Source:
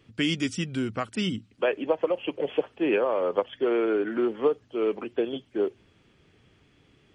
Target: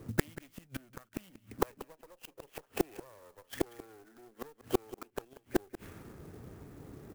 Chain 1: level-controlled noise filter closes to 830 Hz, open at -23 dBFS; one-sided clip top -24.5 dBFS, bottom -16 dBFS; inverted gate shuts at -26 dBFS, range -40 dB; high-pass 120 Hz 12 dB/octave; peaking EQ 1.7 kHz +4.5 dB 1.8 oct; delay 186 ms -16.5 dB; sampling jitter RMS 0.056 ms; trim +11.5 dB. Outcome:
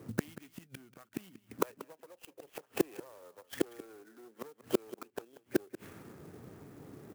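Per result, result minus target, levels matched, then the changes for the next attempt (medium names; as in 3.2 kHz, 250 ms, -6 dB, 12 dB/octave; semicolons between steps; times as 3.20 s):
125 Hz band -5.0 dB; one-sided clip: distortion -5 dB
remove: high-pass 120 Hz 12 dB/octave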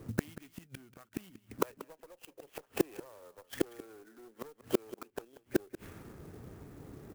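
one-sided clip: distortion -5 dB
change: one-sided clip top -34 dBFS, bottom -16 dBFS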